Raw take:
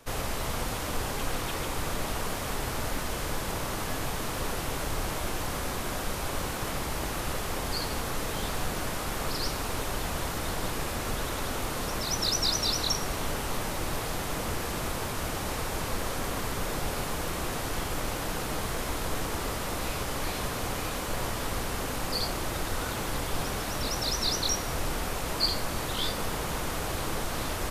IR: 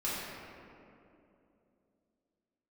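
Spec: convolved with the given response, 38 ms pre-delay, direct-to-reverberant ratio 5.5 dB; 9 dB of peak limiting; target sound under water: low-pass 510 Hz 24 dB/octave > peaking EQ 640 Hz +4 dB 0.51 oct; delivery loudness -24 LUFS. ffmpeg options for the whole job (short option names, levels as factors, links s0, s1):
-filter_complex "[0:a]alimiter=limit=0.0708:level=0:latency=1,asplit=2[s0][s1];[1:a]atrim=start_sample=2205,adelay=38[s2];[s1][s2]afir=irnorm=-1:irlink=0,volume=0.251[s3];[s0][s3]amix=inputs=2:normalize=0,lowpass=f=510:w=0.5412,lowpass=f=510:w=1.3066,equalizer=f=640:t=o:w=0.51:g=4,volume=4.73"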